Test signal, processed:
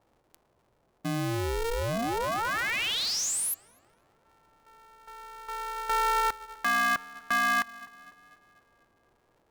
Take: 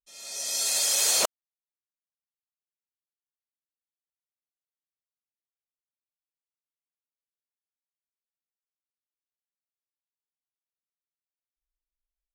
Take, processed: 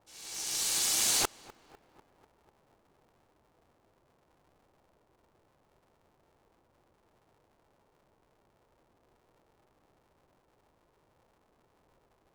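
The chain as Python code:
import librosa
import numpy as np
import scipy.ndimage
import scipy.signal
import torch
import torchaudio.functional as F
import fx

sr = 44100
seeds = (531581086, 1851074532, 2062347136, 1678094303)

y = fx.echo_tape(x, sr, ms=248, feedback_pct=72, wet_db=-17, lp_hz=1600.0, drive_db=15.0, wow_cents=19)
y = fx.dmg_noise_band(y, sr, seeds[0], low_hz=76.0, high_hz=790.0, level_db=-65.0)
y = y * np.sign(np.sin(2.0 * np.pi * 230.0 * np.arange(len(y)) / sr))
y = y * librosa.db_to_amplitude(-4.5)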